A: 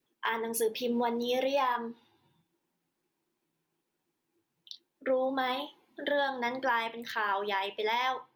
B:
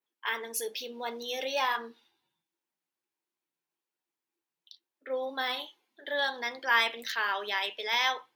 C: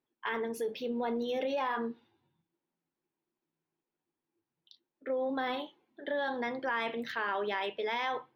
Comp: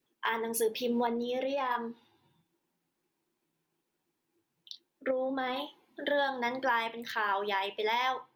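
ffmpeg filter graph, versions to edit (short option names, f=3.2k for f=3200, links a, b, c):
-filter_complex "[2:a]asplit=2[a][b];[0:a]asplit=3[c][d][e];[c]atrim=end=1.072[f];[a]atrim=start=1.068:end=1.712[g];[d]atrim=start=1.708:end=5.112[h];[b]atrim=start=5.108:end=5.562[i];[e]atrim=start=5.558[j];[f][g]acrossfade=d=0.004:c1=hsin:c2=hsin[k];[k][h]acrossfade=d=0.004:c1=hsin:c2=hsin[l];[l][i]acrossfade=d=0.004:c1=hsin:c2=hsin[m];[m][j]acrossfade=d=0.004:c1=hsin:c2=hsin"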